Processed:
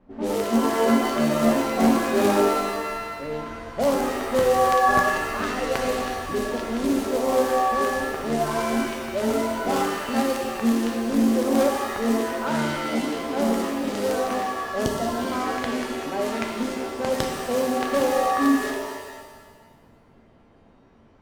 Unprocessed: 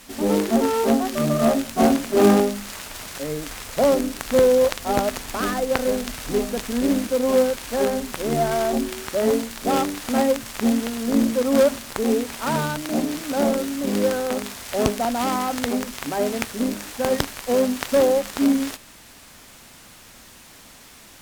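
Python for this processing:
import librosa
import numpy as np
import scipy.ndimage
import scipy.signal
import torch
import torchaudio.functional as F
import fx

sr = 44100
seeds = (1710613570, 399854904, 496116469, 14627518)

y = fx.spec_erase(x, sr, start_s=14.85, length_s=0.47, low_hz=730.0, high_hz=2800.0)
y = fx.env_lowpass(y, sr, base_hz=580.0, full_db=-17.0)
y = fx.rev_shimmer(y, sr, seeds[0], rt60_s=1.3, semitones=7, shimmer_db=-2, drr_db=3.0)
y = F.gain(torch.from_numpy(y), -5.0).numpy()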